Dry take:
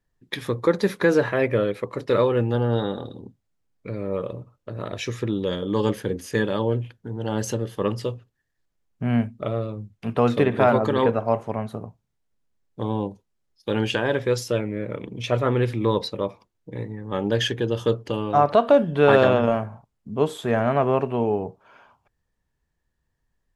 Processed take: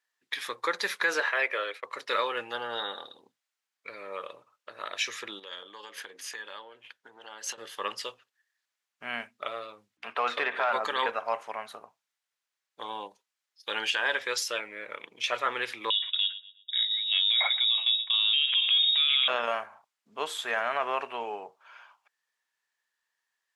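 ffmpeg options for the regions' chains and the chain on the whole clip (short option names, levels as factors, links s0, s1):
-filter_complex "[0:a]asettb=1/sr,asplit=3[s0][s1][s2];[s0]atrim=end=1.204[s3];[s1]atrim=start=1.2:end=1.85,asetpts=PTS-STARTPTS,afade=t=in:d=0.004:c=qsin,afade=t=out:st=0.646:d=0.004:c=qsin,agate=range=0.0224:threshold=0.0251:ratio=3:release=100:detection=peak,highpass=f=330:w=0.5412,highpass=f=330:w=1.3066,highshelf=f=9600:g=-7.5[s4];[s2]atrim=start=1.846[s5];[s3][s4]acrossfade=d=0.004:c1=hsin:c2=qsin[s6];[s6][s5]acrossfade=d=0.004:c1=qsin:c2=hsin,asettb=1/sr,asplit=3[s7][s8][s9];[s7]atrim=end=5.394[s10];[s8]atrim=start=5.39:end=7.58,asetpts=PTS-STARTPTS,afade=t=in:d=0.004:c=qsin,afade=t=out:st=2.186:d=0.004:c=qsin,highshelf=f=6500:g=-4.5,acompressor=threshold=0.0355:ratio=16:attack=3.2:release=140:knee=1:detection=peak,highpass=f=200:p=1[s11];[s9]atrim=start=7.576[s12];[s10][s11]acrossfade=d=0.004:c1=hsin:c2=qsin[s13];[s13][s12]acrossfade=d=0.004:c1=qsin:c2=hsin,asettb=1/sr,asplit=3[s14][s15][s16];[s14]atrim=end=9.974[s17];[s15]atrim=start=9.97:end=10.73,asetpts=PTS-STARTPTS,afade=t=in:d=0.004:c=qsin,afade=t=out:st=0.756:d=0.004:c=qsin,aeval=exprs='val(0)+0.00708*(sin(2*PI*60*n/s)+sin(2*PI*2*60*n/s)/2+sin(2*PI*3*60*n/s)/3+sin(2*PI*4*60*n/s)/4+sin(2*PI*5*60*n/s)/5)':c=same,asplit=2[s18][s19];[s19]highpass=f=720:p=1,volume=3.55,asoftclip=type=tanh:threshold=0.596[s20];[s18][s20]amix=inputs=2:normalize=0,lowpass=f=1500:p=1,volume=0.501[s21];[s16]atrim=start=10.726[s22];[s17][s21]acrossfade=d=0.004:c1=hsin:c2=qsin[s23];[s23][s22]acrossfade=d=0.004:c1=qsin:c2=hsin,asettb=1/sr,asplit=3[s24][s25][s26];[s24]atrim=end=15.904[s27];[s25]atrim=start=15.9:end=19.28,asetpts=PTS-STARTPTS,afade=t=in:d=0.004:c=qsin,afade=t=out:st=3.376:d=0.004:c=qsin,agate=range=0.0224:threshold=0.0158:ratio=3:release=100:detection=peak,asplit=2[s28][s29];[s29]adelay=120,lowpass=f=2800:p=1,volume=0.0891,asplit=2[s30][s31];[s31]adelay=120,lowpass=f=2800:p=1,volume=0.36,asplit=2[s32][s33];[s33]adelay=120,lowpass=f=2800:p=1,volume=0.36[s34];[s28][s30][s32][s34]amix=inputs=4:normalize=0,atrim=end_sample=149058,lowpass=f=3300:t=q:w=0.5098,lowpass=f=3300:t=q:w=0.6013,lowpass=f=3300:t=q:w=0.9,lowpass=f=3300:t=q:w=2.563,afreqshift=-3900[s35];[s26]atrim=start=19.276[s36];[s27][s35]acrossfade=d=0.004:c1=hsin:c2=qsin[s37];[s37][s36]acrossfade=d=0.004:c1=qsin:c2=hsin,highpass=1400,highshelf=f=9300:g=-7.5,alimiter=limit=0.0891:level=0:latency=1:release=42,volume=1.78"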